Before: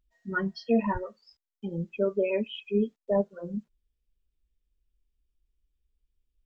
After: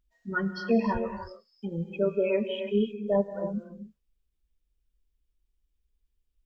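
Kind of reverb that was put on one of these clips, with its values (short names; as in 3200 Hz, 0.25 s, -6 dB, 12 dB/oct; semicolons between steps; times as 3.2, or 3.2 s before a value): non-linear reverb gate 0.33 s rising, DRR 7.5 dB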